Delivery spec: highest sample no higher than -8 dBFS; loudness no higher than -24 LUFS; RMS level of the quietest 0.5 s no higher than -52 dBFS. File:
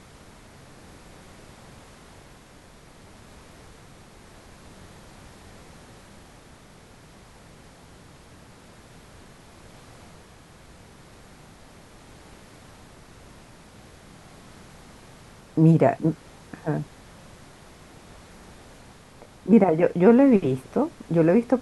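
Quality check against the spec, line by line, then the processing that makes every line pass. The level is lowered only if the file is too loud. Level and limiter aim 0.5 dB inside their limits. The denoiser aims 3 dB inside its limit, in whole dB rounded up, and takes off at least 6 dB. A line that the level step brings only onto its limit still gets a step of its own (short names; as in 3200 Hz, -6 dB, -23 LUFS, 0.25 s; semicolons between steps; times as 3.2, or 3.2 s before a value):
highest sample -4.0 dBFS: fail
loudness -20.5 LUFS: fail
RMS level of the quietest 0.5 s -49 dBFS: fail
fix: gain -4 dB; limiter -8.5 dBFS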